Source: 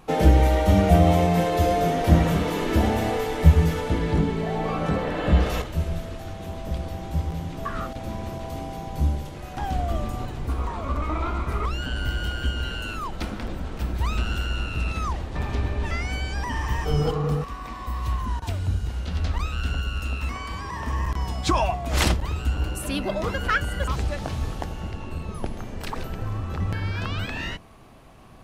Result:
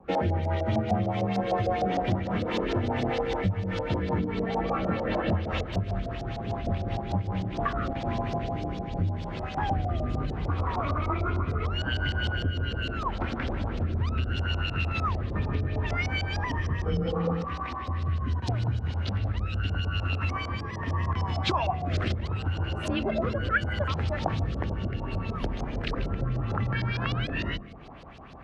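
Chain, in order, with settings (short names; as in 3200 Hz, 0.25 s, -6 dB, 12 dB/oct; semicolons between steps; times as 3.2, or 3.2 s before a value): in parallel at -1 dB: vocal rider within 4 dB 2 s; on the sum: frequency shift +23 Hz; rotary speaker horn 5 Hz, later 0.75 Hz, at 7.19; compressor 6:1, threshold -20 dBFS, peak gain reduction 15 dB; on a send at -20 dB: reverb RT60 0.50 s, pre-delay 0.151 s; on the sum: LFO low-pass saw up 6.6 Hz 590–5500 Hz; gain -4.5 dB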